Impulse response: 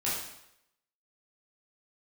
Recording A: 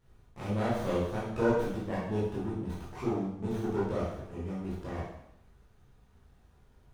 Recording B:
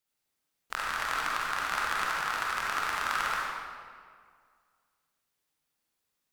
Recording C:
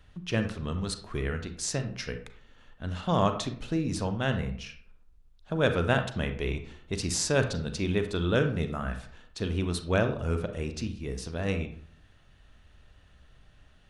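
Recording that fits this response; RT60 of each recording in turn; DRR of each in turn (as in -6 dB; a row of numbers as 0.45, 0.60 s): A; 0.80, 2.0, 0.55 s; -8.5, -4.5, 7.0 dB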